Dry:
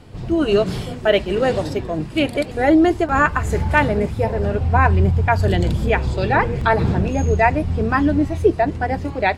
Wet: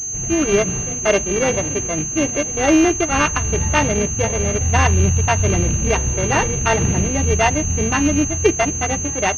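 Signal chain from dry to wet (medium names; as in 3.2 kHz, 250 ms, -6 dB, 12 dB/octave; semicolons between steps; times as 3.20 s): sorted samples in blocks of 16 samples; class-D stage that switches slowly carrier 6.3 kHz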